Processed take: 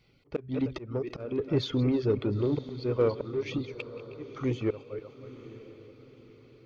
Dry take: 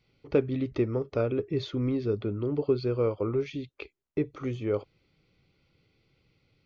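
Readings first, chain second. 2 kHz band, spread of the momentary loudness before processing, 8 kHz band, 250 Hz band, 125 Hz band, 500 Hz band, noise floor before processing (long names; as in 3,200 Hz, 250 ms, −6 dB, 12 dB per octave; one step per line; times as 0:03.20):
0.0 dB, 7 LU, can't be measured, 0.0 dB, 0.0 dB, −2.0 dB, −77 dBFS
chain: feedback delay that plays each chunk backwards 156 ms, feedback 45%, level −11 dB
reverb reduction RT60 0.62 s
in parallel at −3 dB: soft clipping −29.5 dBFS, distortion −7 dB
on the sum: volume swells 306 ms
feedback delay with all-pass diffusion 943 ms, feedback 43%, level −15.5 dB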